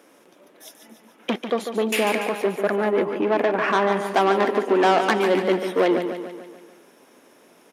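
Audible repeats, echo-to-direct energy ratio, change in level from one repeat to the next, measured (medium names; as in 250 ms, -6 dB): 6, -6.5 dB, -5.5 dB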